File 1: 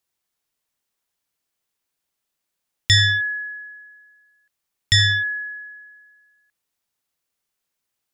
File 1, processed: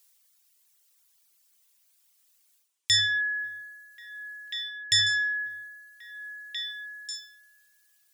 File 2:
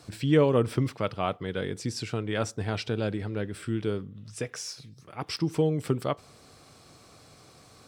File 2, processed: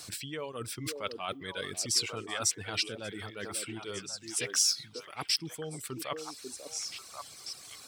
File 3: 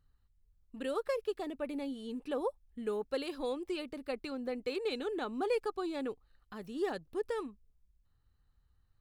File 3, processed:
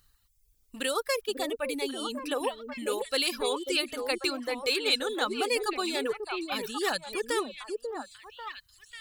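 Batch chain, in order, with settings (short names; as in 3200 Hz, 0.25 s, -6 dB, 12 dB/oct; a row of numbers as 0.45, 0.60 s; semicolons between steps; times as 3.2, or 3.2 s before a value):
reverse; compressor 10:1, threshold -31 dBFS; reverse; high shelf 4400 Hz +10 dB; reverb removal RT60 1.5 s; tilt shelf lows -6.5 dB, about 940 Hz; on a send: delay with a stepping band-pass 0.542 s, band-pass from 370 Hz, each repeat 1.4 oct, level -1.5 dB; on the sum: normalise peaks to -12 dBFS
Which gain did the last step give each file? +2.5, 0.0, +9.0 dB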